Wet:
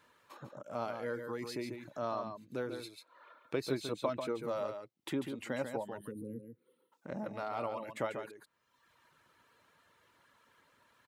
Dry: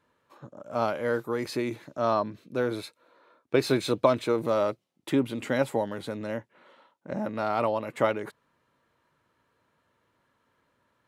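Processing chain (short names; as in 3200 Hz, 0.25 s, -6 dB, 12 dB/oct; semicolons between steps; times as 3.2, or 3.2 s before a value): spectral gain 5.97–6.92, 520–8700 Hz -28 dB; reverb removal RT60 0.86 s; compressor 1.5:1, threshold -50 dBFS, peak gain reduction 12 dB; echo 0.142 s -7 dB; mismatched tape noise reduction encoder only; gain -1 dB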